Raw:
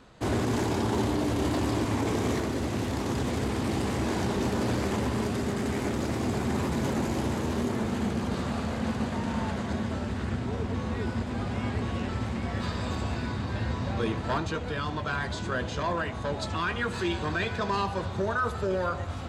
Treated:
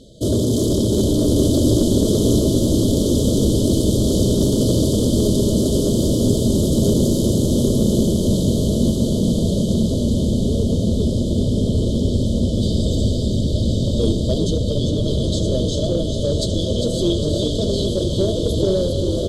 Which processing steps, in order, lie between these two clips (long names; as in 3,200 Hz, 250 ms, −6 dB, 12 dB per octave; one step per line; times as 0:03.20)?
linear-phase brick-wall band-stop 670–3,000 Hz
echo with shifted repeats 400 ms, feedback 52%, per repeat −49 Hz, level −6.5 dB
in parallel at −6 dB: soft clipping −25 dBFS, distortion −15 dB
on the sum: parametric band 11,000 Hz +6 dB 0.79 octaves
feedback delay with all-pass diffusion 1,069 ms, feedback 41%, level −4 dB
level +7 dB